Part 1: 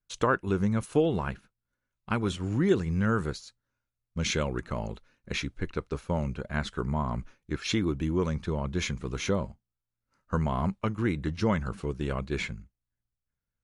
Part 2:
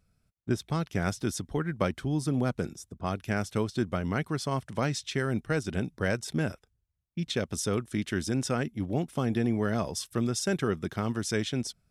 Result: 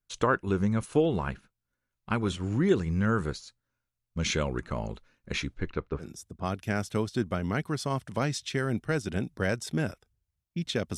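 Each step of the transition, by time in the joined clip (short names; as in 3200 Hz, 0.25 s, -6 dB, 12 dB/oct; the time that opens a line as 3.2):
part 1
5.54–6.1 LPF 6600 Hz -> 1400 Hz
6.04 switch to part 2 from 2.65 s, crossfade 0.12 s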